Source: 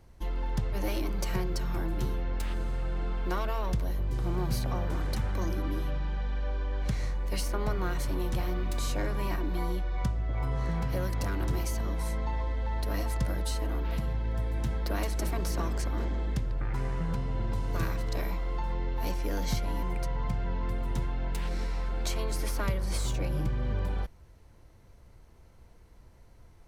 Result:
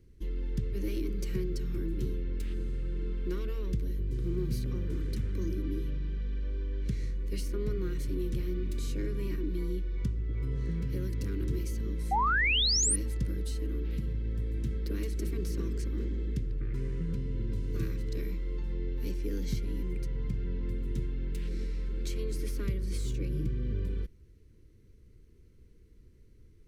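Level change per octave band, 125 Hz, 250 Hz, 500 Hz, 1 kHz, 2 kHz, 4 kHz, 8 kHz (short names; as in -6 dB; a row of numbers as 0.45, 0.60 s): -2.0, -0.5, -3.0, -2.0, +3.0, +5.5, +5.5 dB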